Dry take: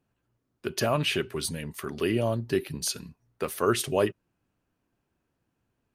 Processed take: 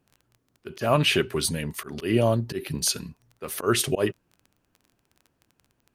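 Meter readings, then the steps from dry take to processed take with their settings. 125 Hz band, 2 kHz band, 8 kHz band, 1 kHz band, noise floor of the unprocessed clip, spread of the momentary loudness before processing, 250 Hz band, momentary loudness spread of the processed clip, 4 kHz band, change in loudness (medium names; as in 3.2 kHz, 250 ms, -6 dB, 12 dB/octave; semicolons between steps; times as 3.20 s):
+4.5 dB, +3.5 dB, +5.0 dB, +2.5 dB, -79 dBFS, 11 LU, +3.0 dB, 13 LU, +5.0 dB, +3.5 dB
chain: crackle 12 per s -45 dBFS; slow attack 141 ms; trim +5.5 dB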